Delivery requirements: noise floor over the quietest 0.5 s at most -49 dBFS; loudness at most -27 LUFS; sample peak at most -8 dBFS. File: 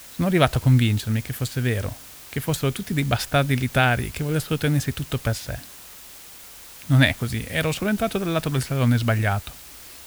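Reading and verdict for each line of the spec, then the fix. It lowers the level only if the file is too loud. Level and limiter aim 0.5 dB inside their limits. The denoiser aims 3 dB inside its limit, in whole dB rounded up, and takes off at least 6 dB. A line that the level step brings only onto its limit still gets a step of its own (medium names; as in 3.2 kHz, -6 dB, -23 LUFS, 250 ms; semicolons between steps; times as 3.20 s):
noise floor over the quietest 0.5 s -43 dBFS: fail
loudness -23.0 LUFS: fail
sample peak -4.0 dBFS: fail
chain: noise reduction 6 dB, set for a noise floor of -43 dBFS; trim -4.5 dB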